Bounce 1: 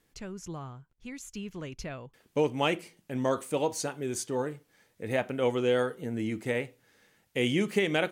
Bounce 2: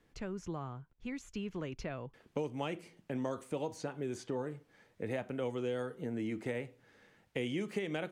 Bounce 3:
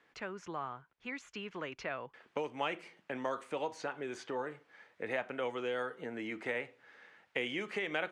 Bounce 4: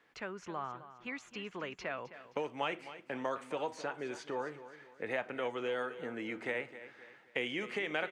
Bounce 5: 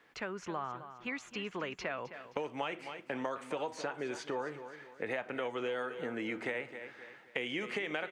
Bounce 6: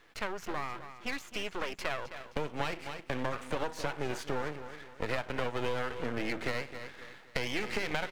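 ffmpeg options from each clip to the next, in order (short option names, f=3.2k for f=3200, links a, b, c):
-filter_complex "[0:a]aemphasis=mode=reproduction:type=75kf,acrossover=split=240|5200[a][b][c];[a]acompressor=threshold=-47dB:ratio=4[d];[b]acompressor=threshold=-40dB:ratio=4[e];[c]acompressor=threshold=-59dB:ratio=4[f];[d][e][f]amix=inputs=3:normalize=0,volume=2.5dB"
-af "bandpass=f=1.6k:t=q:w=0.78:csg=0,volume=8dB"
-af "aecho=1:1:262|524|786|1048:0.2|0.0758|0.0288|0.0109"
-af "acompressor=threshold=-37dB:ratio=4,volume=4dB"
-af "aeval=exprs='max(val(0),0)':c=same,volume=7dB"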